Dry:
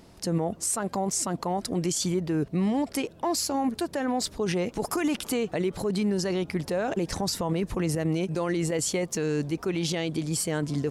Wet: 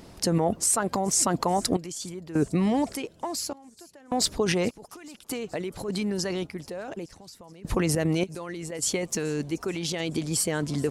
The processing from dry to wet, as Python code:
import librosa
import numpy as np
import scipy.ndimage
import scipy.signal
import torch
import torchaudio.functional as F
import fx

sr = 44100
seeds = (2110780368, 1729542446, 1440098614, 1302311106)

y = fx.tremolo_random(x, sr, seeds[0], hz=1.7, depth_pct=95)
y = fx.hpss(y, sr, part='percussive', gain_db=5)
y = fx.echo_wet_highpass(y, sr, ms=429, feedback_pct=63, hz=5000.0, wet_db=-20.0)
y = y * librosa.db_to_amplitude(2.0)